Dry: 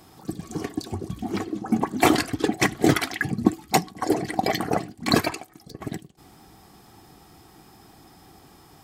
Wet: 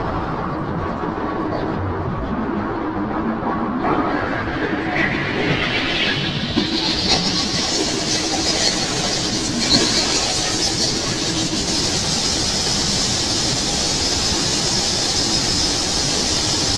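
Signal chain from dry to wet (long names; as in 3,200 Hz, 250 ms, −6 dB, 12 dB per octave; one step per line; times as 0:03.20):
linear delta modulator 64 kbit/s, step −15.5 dBFS
parametric band 4,400 Hz +11.5 dB 1.2 octaves
on a send: repeating echo 77 ms, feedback 52%, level −8 dB
on the sum: time stretch by phase vocoder 1.9×
in parallel at −4.5 dB: decimation without filtering 34×
on the sum: low-pass filter sweep 1,200 Hz → 6,600 Hz, 0:03.89–0:07.87
level −3.5 dB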